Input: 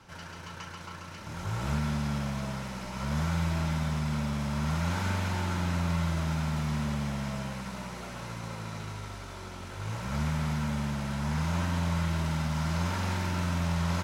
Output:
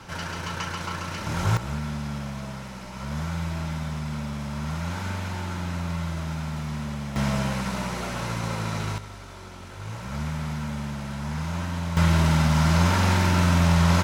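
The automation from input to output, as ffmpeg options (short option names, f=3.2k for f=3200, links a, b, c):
-af "asetnsamples=n=441:p=0,asendcmd='1.57 volume volume -0.5dB;7.16 volume volume 9.5dB;8.98 volume volume 0dB;11.97 volume volume 10dB',volume=11dB"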